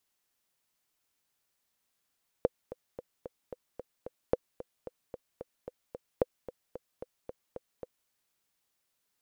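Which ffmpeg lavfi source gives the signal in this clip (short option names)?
-f lavfi -i "aevalsrc='pow(10,(-11-16*gte(mod(t,7*60/223),60/223))/20)*sin(2*PI*503*mod(t,60/223))*exp(-6.91*mod(t,60/223)/0.03)':d=5.65:s=44100"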